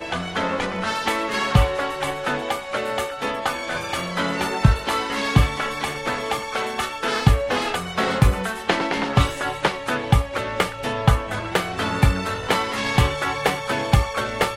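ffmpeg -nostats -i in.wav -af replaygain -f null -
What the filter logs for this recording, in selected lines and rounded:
track_gain = +2.3 dB
track_peak = 0.608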